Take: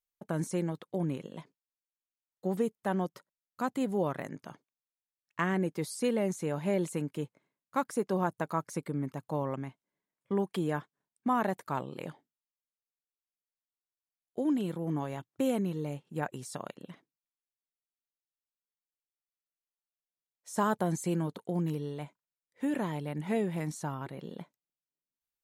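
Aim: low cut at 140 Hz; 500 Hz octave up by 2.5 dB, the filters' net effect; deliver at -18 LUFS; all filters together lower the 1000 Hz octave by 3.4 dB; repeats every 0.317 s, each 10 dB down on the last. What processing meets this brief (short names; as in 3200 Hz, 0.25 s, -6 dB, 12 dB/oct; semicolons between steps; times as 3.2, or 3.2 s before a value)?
HPF 140 Hz; bell 500 Hz +4.5 dB; bell 1000 Hz -6 dB; feedback echo 0.317 s, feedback 32%, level -10 dB; gain +15 dB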